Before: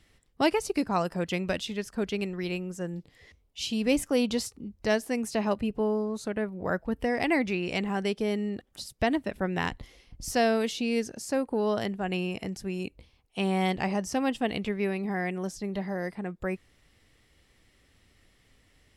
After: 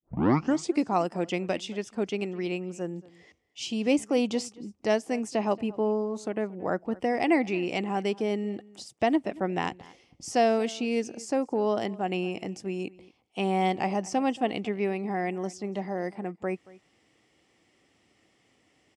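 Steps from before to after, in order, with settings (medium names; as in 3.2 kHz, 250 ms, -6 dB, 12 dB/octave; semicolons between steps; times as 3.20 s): tape start-up on the opening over 0.79 s; cabinet simulation 170–8500 Hz, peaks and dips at 330 Hz +5 dB, 760 Hz +5 dB, 1.6 kHz -6 dB, 4 kHz -7 dB; echo from a far wall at 39 m, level -21 dB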